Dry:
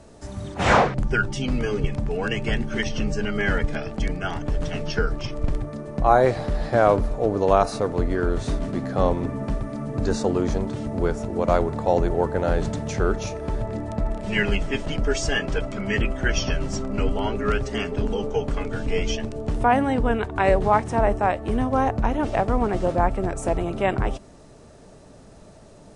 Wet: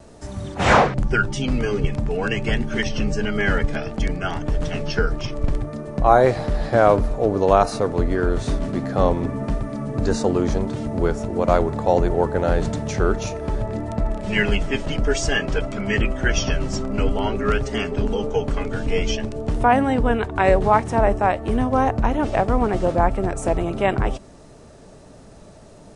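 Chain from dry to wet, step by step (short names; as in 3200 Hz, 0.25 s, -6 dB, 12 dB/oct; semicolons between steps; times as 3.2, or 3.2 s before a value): vibrato 1.6 Hz 25 cents; gain +2.5 dB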